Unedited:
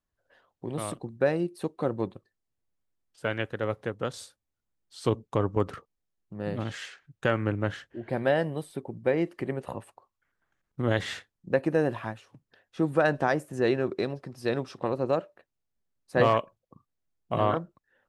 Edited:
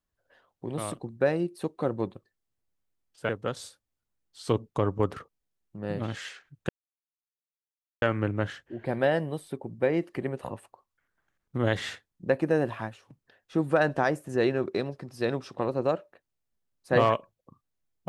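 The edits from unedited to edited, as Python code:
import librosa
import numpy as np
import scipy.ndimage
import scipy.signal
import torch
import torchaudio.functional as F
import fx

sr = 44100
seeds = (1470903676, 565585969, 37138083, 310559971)

y = fx.edit(x, sr, fx.cut(start_s=3.29, length_s=0.57),
    fx.insert_silence(at_s=7.26, length_s=1.33), tone=tone)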